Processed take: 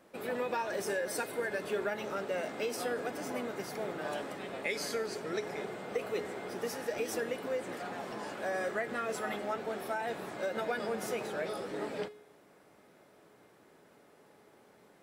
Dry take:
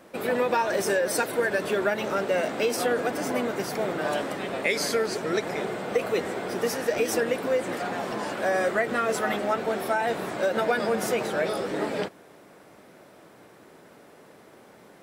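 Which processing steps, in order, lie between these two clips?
feedback comb 420 Hz, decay 0.6 s, mix 70%

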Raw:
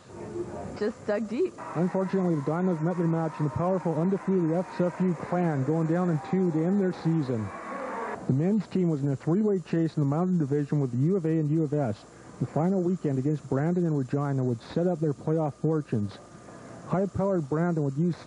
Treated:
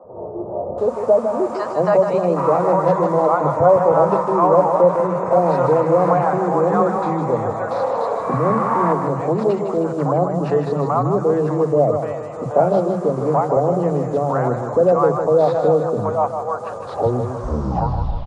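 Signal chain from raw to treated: tape stop on the ending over 1.80 s; high-order bell 780 Hz +15.5 dB; three bands offset in time mids, lows, highs 40/780 ms, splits 210/720 Hz; modulated delay 155 ms, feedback 52%, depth 53 cents, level -7.5 dB; trim +4 dB

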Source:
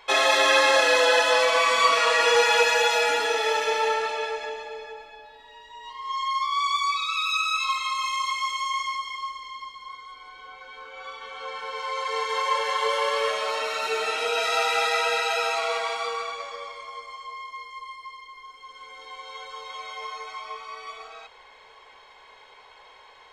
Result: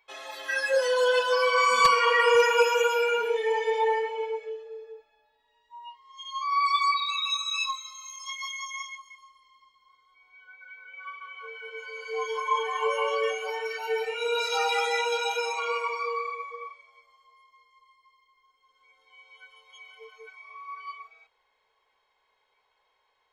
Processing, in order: spectral noise reduction 23 dB; wavefolder -12 dBFS; trim +1.5 dB

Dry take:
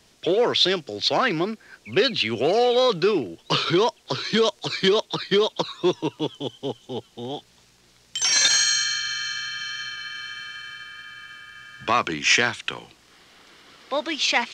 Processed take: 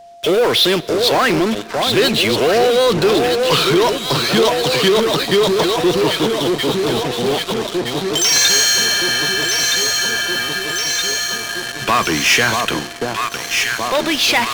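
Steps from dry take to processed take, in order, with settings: echo whose repeats swap between lows and highs 635 ms, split 1.1 kHz, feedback 77%, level -6.5 dB; in parallel at -4.5 dB: fuzz box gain 37 dB, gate -37 dBFS; on the sum: Schroeder reverb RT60 2.4 s, combs from 28 ms, DRR 20 dB; whistle 690 Hz -38 dBFS

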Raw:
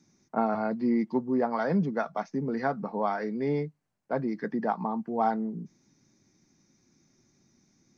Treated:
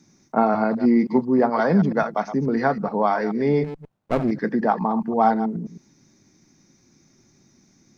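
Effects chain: chunks repeated in reverse 107 ms, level -11 dB; 3.64–4.31 s: sliding maximum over 17 samples; trim +8 dB

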